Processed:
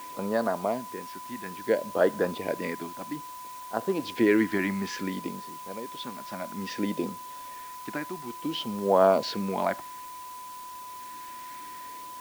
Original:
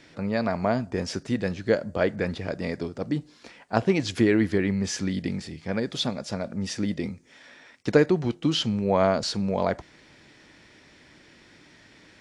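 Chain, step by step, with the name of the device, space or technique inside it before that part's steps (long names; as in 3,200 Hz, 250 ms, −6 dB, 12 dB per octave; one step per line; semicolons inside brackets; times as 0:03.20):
shortwave radio (band-pass filter 290–3,000 Hz; amplitude tremolo 0.43 Hz, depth 75%; auto-filter notch sine 0.59 Hz 440–2,400 Hz; steady tone 1,000 Hz −43 dBFS; white noise bed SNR 19 dB)
level +3.5 dB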